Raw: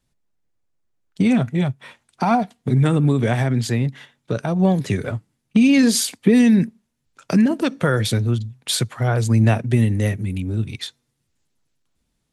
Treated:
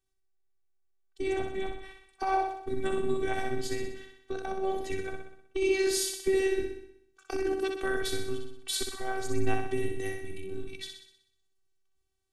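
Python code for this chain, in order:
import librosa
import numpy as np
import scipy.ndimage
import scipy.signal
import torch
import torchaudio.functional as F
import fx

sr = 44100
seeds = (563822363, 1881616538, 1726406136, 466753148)

p1 = x + fx.room_flutter(x, sr, wall_m=10.7, rt60_s=0.73, dry=0)
p2 = fx.robotise(p1, sr, hz=383.0)
y = p2 * 10.0 ** (-8.5 / 20.0)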